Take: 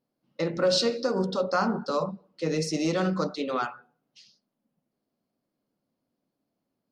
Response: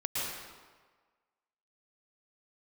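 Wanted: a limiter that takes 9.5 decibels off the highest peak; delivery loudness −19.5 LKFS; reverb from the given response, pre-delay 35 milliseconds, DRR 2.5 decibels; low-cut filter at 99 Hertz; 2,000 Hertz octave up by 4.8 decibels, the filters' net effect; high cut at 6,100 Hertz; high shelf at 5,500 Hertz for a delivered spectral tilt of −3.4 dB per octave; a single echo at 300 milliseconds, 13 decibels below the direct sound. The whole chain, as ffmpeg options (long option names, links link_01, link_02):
-filter_complex "[0:a]highpass=99,lowpass=6100,equalizer=frequency=2000:width_type=o:gain=6.5,highshelf=frequency=5500:gain=5.5,alimiter=limit=-20dB:level=0:latency=1,aecho=1:1:300:0.224,asplit=2[link_01][link_02];[1:a]atrim=start_sample=2205,adelay=35[link_03];[link_02][link_03]afir=irnorm=-1:irlink=0,volume=-9dB[link_04];[link_01][link_04]amix=inputs=2:normalize=0,volume=9dB"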